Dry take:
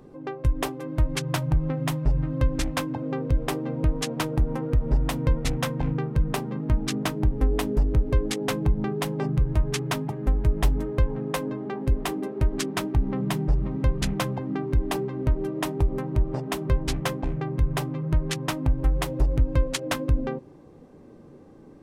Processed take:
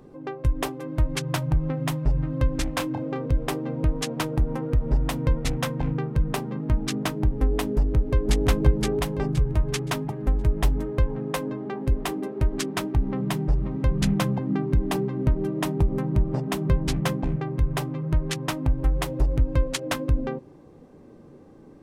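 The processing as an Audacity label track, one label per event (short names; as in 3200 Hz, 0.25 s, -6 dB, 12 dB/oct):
2.700000	3.260000	doubler 29 ms -6.5 dB
7.750000	8.470000	echo throw 0.52 s, feedback 30%, level -1 dB
13.910000	17.360000	bell 180 Hz +8.5 dB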